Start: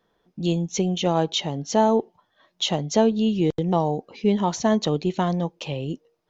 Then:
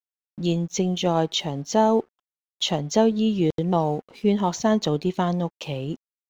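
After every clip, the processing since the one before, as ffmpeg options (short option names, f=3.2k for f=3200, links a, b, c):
-af "agate=range=-10dB:threshold=-51dB:ratio=16:detection=peak,aeval=exprs='sgn(val(0))*max(abs(val(0))-0.00282,0)':c=same"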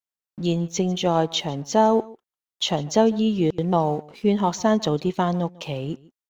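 -filter_complex "[0:a]acrossover=split=1400[a][b];[a]crystalizer=i=7:c=0[c];[c][b]amix=inputs=2:normalize=0,aecho=1:1:148:0.0794"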